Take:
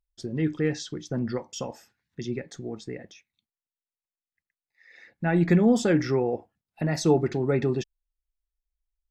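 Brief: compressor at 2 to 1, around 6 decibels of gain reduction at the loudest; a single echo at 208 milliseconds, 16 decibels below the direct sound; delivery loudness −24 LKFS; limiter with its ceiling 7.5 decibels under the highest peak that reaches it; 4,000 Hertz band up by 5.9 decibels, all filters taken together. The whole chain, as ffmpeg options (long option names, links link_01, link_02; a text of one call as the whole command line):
ffmpeg -i in.wav -af "equalizer=frequency=4000:width_type=o:gain=7.5,acompressor=threshold=-26dB:ratio=2,alimiter=limit=-21.5dB:level=0:latency=1,aecho=1:1:208:0.158,volume=8.5dB" out.wav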